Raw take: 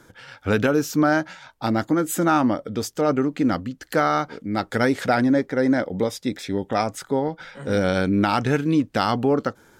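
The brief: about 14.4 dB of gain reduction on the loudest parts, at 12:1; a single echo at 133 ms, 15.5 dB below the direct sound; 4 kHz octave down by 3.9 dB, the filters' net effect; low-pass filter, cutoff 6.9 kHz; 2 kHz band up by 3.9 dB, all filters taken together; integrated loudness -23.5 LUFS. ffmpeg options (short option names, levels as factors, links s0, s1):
-af "lowpass=6900,equalizer=f=2000:t=o:g=7,equalizer=f=4000:t=o:g=-7,acompressor=threshold=0.0355:ratio=12,aecho=1:1:133:0.168,volume=3.35"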